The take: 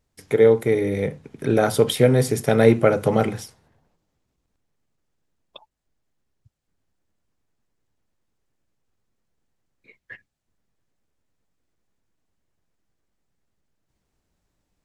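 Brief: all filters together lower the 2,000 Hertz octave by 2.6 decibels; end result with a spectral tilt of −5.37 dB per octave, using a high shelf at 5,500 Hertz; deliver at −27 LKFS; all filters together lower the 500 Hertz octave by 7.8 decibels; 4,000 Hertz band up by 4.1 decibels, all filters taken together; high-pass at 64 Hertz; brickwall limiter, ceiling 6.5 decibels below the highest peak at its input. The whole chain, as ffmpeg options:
ffmpeg -i in.wav -af "highpass=64,equalizer=frequency=500:width_type=o:gain=-9,equalizer=frequency=2000:width_type=o:gain=-4,equalizer=frequency=4000:width_type=o:gain=8.5,highshelf=frequency=5500:gain=-5,volume=-1.5dB,alimiter=limit=-14dB:level=0:latency=1" out.wav

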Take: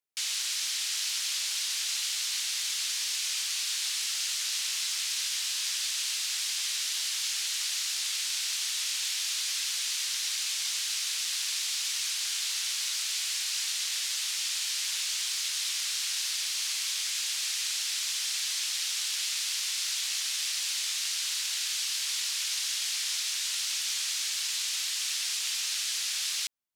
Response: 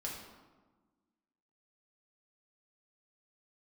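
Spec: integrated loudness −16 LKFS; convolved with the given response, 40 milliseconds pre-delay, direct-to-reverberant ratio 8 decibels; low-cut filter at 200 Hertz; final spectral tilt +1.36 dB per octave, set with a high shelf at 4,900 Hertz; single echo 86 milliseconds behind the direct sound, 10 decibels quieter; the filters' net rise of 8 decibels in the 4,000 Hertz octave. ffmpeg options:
-filter_complex "[0:a]highpass=200,equalizer=frequency=4000:width_type=o:gain=6,highshelf=frequency=4900:gain=7.5,aecho=1:1:86:0.316,asplit=2[link_01][link_02];[1:a]atrim=start_sample=2205,adelay=40[link_03];[link_02][link_03]afir=irnorm=-1:irlink=0,volume=-8dB[link_04];[link_01][link_04]amix=inputs=2:normalize=0,volume=4dB"

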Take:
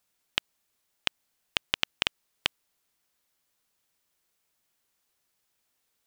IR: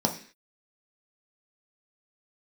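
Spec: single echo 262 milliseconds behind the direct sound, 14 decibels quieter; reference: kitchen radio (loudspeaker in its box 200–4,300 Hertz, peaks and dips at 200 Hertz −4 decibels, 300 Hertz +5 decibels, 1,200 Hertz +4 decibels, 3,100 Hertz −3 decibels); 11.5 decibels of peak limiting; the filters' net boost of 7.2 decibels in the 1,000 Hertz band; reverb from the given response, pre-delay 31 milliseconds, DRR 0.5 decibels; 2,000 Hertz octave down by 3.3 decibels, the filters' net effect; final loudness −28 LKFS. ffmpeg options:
-filter_complex "[0:a]equalizer=frequency=1000:width_type=o:gain=8.5,equalizer=frequency=2000:width_type=o:gain=-6,alimiter=limit=-14.5dB:level=0:latency=1,aecho=1:1:262:0.2,asplit=2[link_01][link_02];[1:a]atrim=start_sample=2205,adelay=31[link_03];[link_02][link_03]afir=irnorm=-1:irlink=0,volume=-11dB[link_04];[link_01][link_04]amix=inputs=2:normalize=0,highpass=200,equalizer=frequency=200:width_type=q:width=4:gain=-4,equalizer=frequency=300:width_type=q:width=4:gain=5,equalizer=frequency=1200:width_type=q:width=4:gain=4,equalizer=frequency=3100:width_type=q:width=4:gain=-3,lowpass=frequency=4300:width=0.5412,lowpass=frequency=4300:width=1.3066,volume=16.5dB"

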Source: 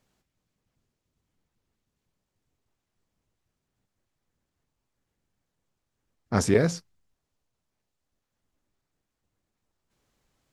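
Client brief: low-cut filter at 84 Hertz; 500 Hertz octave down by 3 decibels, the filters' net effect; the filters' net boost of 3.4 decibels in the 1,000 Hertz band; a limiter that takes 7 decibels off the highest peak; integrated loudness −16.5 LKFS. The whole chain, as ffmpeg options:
ffmpeg -i in.wav -af "highpass=84,equalizer=frequency=500:width_type=o:gain=-5,equalizer=frequency=1000:width_type=o:gain=6.5,volume=12dB,alimiter=limit=-1.5dB:level=0:latency=1" out.wav

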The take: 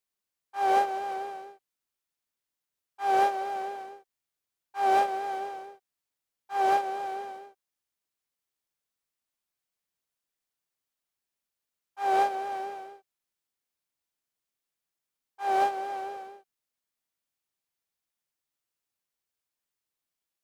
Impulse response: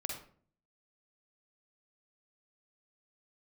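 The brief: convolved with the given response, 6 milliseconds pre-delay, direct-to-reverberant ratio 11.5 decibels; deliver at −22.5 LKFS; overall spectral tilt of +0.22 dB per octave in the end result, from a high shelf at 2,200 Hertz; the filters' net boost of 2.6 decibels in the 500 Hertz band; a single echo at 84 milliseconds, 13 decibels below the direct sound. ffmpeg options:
-filter_complex "[0:a]equalizer=frequency=500:width_type=o:gain=3.5,highshelf=frequency=2200:gain=5.5,aecho=1:1:84:0.224,asplit=2[link_01][link_02];[1:a]atrim=start_sample=2205,adelay=6[link_03];[link_02][link_03]afir=irnorm=-1:irlink=0,volume=-12dB[link_04];[link_01][link_04]amix=inputs=2:normalize=0,volume=4dB"

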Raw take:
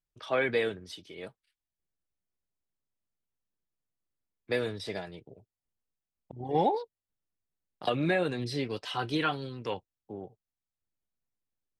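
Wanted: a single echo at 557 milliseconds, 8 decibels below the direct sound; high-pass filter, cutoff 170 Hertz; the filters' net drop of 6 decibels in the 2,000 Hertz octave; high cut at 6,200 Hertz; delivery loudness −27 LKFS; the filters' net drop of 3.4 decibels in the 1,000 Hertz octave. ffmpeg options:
ffmpeg -i in.wav -af "highpass=170,lowpass=6200,equalizer=frequency=1000:width_type=o:gain=-3.5,equalizer=frequency=2000:width_type=o:gain=-6.5,aecho=1:1:557:0.398,volume=7.5dB" out.wav

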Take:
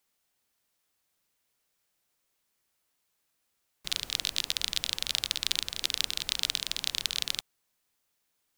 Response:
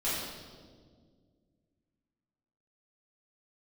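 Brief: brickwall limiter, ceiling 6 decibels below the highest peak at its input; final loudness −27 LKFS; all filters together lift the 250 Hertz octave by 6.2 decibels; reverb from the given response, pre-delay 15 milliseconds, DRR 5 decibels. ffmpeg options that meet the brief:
-filter_complex "[0:a]equalizer=frequency=250:width_type=o:gain=8,alimiter=limit=-9.5dB:level=0:latency=1,asplit=2[link_01][link_02];[1:a]atrim=start_sample=2205,adelay=15[link_03];[link_02][link_03]afir=irnorm=-1:irlink=0,volume=-13dB[link_04];[link_01][link_04]amix=inputs=2:normalize=0,volume=4.5dB"

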